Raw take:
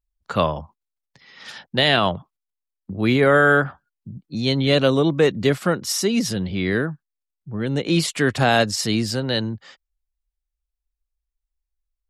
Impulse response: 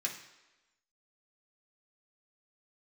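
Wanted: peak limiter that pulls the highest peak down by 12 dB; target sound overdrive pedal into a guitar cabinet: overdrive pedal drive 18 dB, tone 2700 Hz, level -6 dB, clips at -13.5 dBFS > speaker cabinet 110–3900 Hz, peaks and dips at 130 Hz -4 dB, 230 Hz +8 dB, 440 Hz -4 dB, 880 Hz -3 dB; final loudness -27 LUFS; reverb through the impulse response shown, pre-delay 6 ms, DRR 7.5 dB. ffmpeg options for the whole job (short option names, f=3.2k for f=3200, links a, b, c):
-filter_complex "[0:a]alimiter=limit=-17dB:level=0:latency=1,asplit=2[a][b];[1:a]atrim=start_sample=2205,adelay=6[c];[b][c]afir=irnorm=-1:irlink=0,volume=-10dB[d];[a][d]amix=inputs=2:normalize=0,asplit=2[e][f];[f]highpass=f=720:p=1,volume=18dB,asoftclip=type=tanh:threshold=-13.5dB[g];[e][g]amix=inputs=2:normalize=0,lowpass=f=2.7k:p=1,volume=-6dB,highpass=110,equalizer=f=130:t=q:w=4:g=-4,equalizer=f=230:t=q:w=4:g=8,equalizer=f=440:t=q:w=4:g=-4,equalizer=f=880:t=q:w=4:g=-3,lowpass=f=3.9k:w=0.5412,lowpass=f=3.9k:w=1.3066,volume=-3.5dB"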